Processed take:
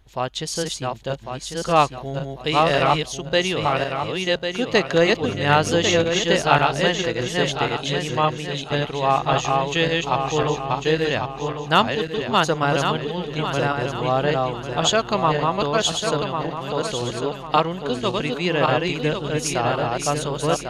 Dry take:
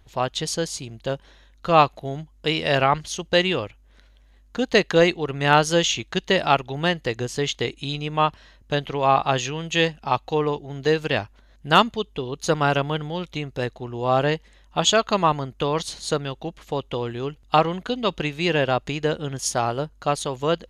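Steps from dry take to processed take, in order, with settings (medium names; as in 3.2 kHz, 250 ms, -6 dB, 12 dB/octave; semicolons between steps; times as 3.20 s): backward echo that repeats 549 ms, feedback 57%, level -2 dB; 5.21–6.05 s: mains buzz 100 Hz, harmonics 7, -30 dBFS -4 dB/octave; trim -1 dB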